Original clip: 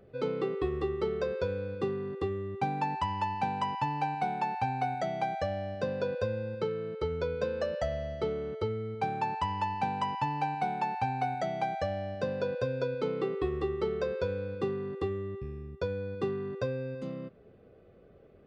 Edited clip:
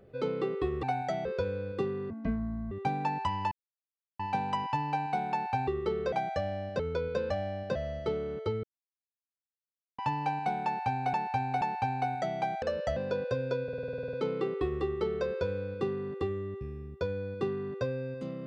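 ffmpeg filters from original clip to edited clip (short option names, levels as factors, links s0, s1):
-filter_complex "[0:a]asplit=27[s0][s1][s2][s3][s4][s5][s6][s7][s8][s9][s10][s11][s12][s13][s14][s15][s16][s17][s18][s19][s20][s21][s22][s23][s24][s25][s26];[s0]atrim=end=0.832[s27];[s1]atrim=start=4.758:end=5.182[s28];[s2]atrim=start=1.278:end=2.134[s29];[s3]atrim=start=2.13:end=2.48,asetpts=PTS-STARTPTS,asetrate=25137,aresample=44100[s30];[s4]atrim=start=2.476:end=3.28,asetpts=PTS-STARTPTS,afade=t=out:st=0.8:d=0.004:c=hsin,apad=pad_dur=0.68[s31];[s5]atrim=start=3.28:end=4.762,asetpts=PTS-STARTPTS,afade=t=in:d=0.004:c=hsin[s32];[s6]atrim=start=0.828:end=1.282[s33];[s7]atrim=start=5.178:end=5.852[s34];[s8]atrim=start=7.058:end=7.572[s35];[s9]atrim=start=11.818:end=12.272[s36];[s10]atrim=start=7.908:end=8.79,asetpts=PTS-STARTPTS,afade=t=out:st=0.878:d=0.004:c=hsin[s37];[s11]atrim=start=8.79:end=10.14,asetpts=PTS-STARTPTS,volume=0[s38];[s12]atrim=start=10.14:end=11.292,asetpts=PTS-STARTPTS,afade=t=in:d=0.004:c=hsin[s39];[s13]atrim=start=10.808:end=11.292[s40];[s14]atrim=start=10.808:end=11.822[s41];[s15]atrim=start=7.568:end=7.912[s42];[s16]atrim=start=12.268:end=12.992[s43];[s17]atrim=start=12.938:end=12.992[s44];[s18]atrim=start=12.938:end=12.992[s45];[s19]atrim=start=12.938:end=12.992[s46];[s20]atrim=start=12.938:end=12.992[s47];[s21]atrim=start=12.938:end=12.992[s48];[s22]atrim=start=12.938:end=12.992[s49];[s23]atrim=start=12.938:end=12.992[s50];[s24]atrim=start=12.938:end=12.992[s51];[s25]atrim=start=12.938:end=12.992[s52];[s26]atrim=start=12.938[s53];[s27][s28]acrossfade=d=0.004:c1=hsin:c2=hsin[s54];[s54][s29]acrossfade=d=0.004:c1=hsin:c2=hsin[s55];[s55][s30]acrossfade=d=0.004:c1=hsin:c2=hsin[s56];[s31][s32]concat=n=2:v=0:a=1[s57];[s56][s57]acrossfade=d=0.004:c1=hsin:c2=hsin[s58];[s58][s33]acrossfade=d=0.004:c1=hsin:c2=hsin[s59];[s59][s34]acrossfade=d=0.004:c1=hsin:c2=hsin[s60];[s60][s35]acrossfade=d=0.004:c1=hsin:c2=hsin[s61];[s61][s36]acrossfade=d=0.004:c1=hsin:c2=hsin[s62];[s37][s38][s39]concat=n=3:v=0:a=1[s63];[s62][s63]acrossfade=d=0.004:c1=hsin:c2=hsin[s64];[s64][s40]acrossfade=d=0.004:c1=hsin:c2=hsin[s65];[s65][s41]acrossfade=d=0.004:c1=hsin:c2=hsin[s66];[s66][s42]acrossfade=d=0.004:c1=hsin:c2=hsin[s67];[s67][s43]acrossfade=d=0.004:c1=hsin:c2=hsin[s68];[s68][s44]acrossfade=d=0.004:c1=hsin:c2=hsin[s69];[s69][s45]acrossfade=d=0.004:c1=hsin:c2=hsin[s70];[s70][s46]acrossfade=d=0.004:c1=hsin:c2=hsin[s71];[s71][s47]acrossfade=d=0.004:c1=hsin:c2=hsin[s72];[s72][s48]acrossfade=d=0.004:c1=hsin:c2=hsin[s73];[s73][s49]acrossfade=d=0.004:c1=hsin:c2=hsin[s74];[s74][s50]acrossfade=d=0.004:c1=hsin:c2=hsin[s75];[s75][s51]acrossfade=d=0.004:c1=hsin:c2=hsin[s76];[s76][s52]acrossfade=d=0.004:c1=hsin:c2=hsin[s77];[s77][s53]acrossfade=d=0.004:c1=hsin:c2=hsin"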